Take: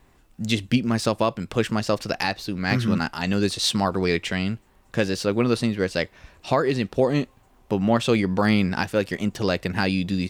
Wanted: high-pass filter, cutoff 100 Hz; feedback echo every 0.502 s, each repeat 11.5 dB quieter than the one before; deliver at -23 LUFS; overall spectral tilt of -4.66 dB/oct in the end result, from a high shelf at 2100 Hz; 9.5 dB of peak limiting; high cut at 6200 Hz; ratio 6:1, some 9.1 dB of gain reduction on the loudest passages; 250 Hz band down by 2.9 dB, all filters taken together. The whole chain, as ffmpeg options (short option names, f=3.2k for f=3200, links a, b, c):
-af "highpass=100,lowpass=6.2k,equalizer=f=250:t=o:g=-3.5,highshelf=f=2.1k:g=4,acompressor=threshold=-26dB:ratio=6,alimiter=limit=-19dB:level=0:latency=1,aecho=1:1:502|1004|1506:0.266|0.0718|0.0194,volume=9.5dB"